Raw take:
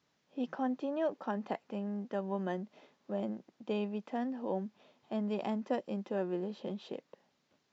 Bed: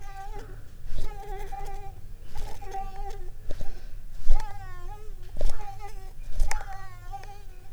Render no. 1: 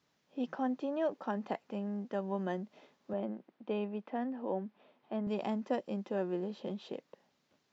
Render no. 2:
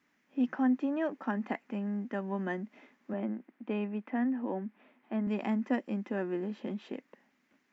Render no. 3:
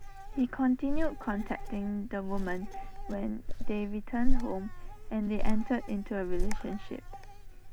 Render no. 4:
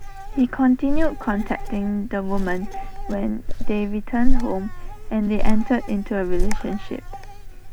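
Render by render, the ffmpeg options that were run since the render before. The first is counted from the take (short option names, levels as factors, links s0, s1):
-filter_complex "[0:a]asettb=1/sr,asplit=3[s0][s1][s2];[s0]atrim=end=3.134[s3];[s1]atrim=start=3.13:end=5.27,asetpts=PTS-STARTPTS,afade=t=in:d=0.004:c=qsin,afade=t=out:st=2.136:d=0.004:c=qsin,highpass=180,lowpass=2800[s4];[s2]atrim=start=5.266[s5];[s3][s4]acrossfade=d=0.004:c1=hsin:c2=qsin[s6];[s6][s5]acrossfade=d=0.004:c1=qsin:c2=hsin"
-af "equalizer=f=125:t=o:w=1:g=-11,equalizer=f=250:t=o:w=1:g=11,equalizer=f=500:t=o:w=1:g=-5,equalizer=f=2000:t=o:w=1:g=11,equalizer=f=4000:t=o:w=1:g=-8"
-filter_complex "[1:a]volume=0.398[s0];[0:a][s0]amix=inputs=2:normalize=0"
-af "volume=3.35,alimiter=limit=0.794:level=0:latency=1"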